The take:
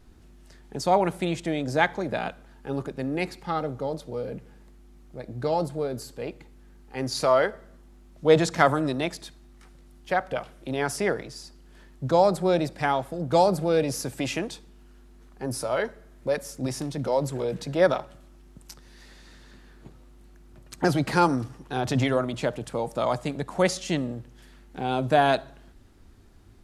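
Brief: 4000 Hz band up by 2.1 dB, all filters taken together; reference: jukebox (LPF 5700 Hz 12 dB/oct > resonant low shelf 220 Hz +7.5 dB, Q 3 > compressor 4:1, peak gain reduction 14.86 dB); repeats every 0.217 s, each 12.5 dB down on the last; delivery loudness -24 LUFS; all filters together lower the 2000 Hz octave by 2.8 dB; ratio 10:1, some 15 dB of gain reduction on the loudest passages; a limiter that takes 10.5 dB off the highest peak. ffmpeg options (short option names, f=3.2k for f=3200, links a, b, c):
-af "equalizer=f=2k:t=o:g=-4.5,equalizer=f=4k:t=o:g=5,acompressor=threshold=-28dB:ratio=10,alimiter=level_in=2.5dB:limit=-24dB:level=0:latency=1,volume=-2.5dB,lowpass=5.7k,lowshelf=f=220:t=q:w=3:g=7.5,aecho=1:1:217|434|651:0.237|0.0569|0.0137,acompressor=threshold=-38dB:ratio=4,volume=18dB"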